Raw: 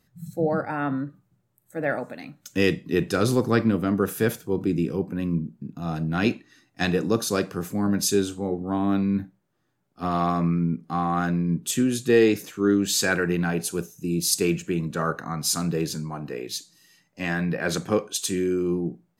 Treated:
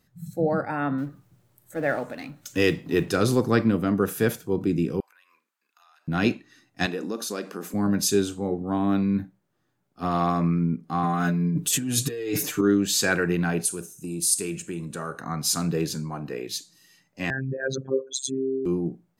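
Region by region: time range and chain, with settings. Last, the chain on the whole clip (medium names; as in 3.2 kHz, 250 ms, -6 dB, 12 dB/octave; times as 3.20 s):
0.98–3.14 s: companding laws mixed up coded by mu + peaking EQ 200 Hz -7.5 dB 0.25 oct
5.00–6.08 s: high-pass 1.1 kHz 24 dB/octave + compression 8:1, threshold -55 dBFS
6.86–7.74 s: brick-wall FIR high-pass 180 Hz + compression 2.5:1, threshold -29 dBFS
11.03–12.61 s: treble shelf 8.5 kHz +7.5 dB + compressor with a negative ratio -28 dBFS + comb 6.8 ms, depth 85%
13.65–15.21 s: compression 2:1, threshold -27 dBFS + peaking EQ 9 kHz +15 dB 0.61 oct + feedback comb 68 Hz, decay 0.42 s, mix 40%
17.30–18.66 s: resonances exaggerated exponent 3 + robot voice 133 Hz
whole clip: none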